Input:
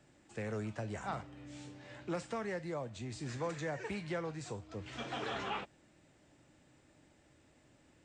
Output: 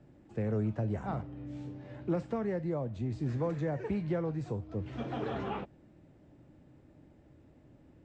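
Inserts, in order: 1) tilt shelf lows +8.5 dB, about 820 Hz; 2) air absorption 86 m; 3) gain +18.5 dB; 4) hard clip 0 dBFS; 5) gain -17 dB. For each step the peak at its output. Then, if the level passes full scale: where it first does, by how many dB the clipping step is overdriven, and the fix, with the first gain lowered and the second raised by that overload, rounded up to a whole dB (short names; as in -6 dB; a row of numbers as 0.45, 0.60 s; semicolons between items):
-23.0, -23.0, -4.5, -4.5, -21.5 dBFS; no overload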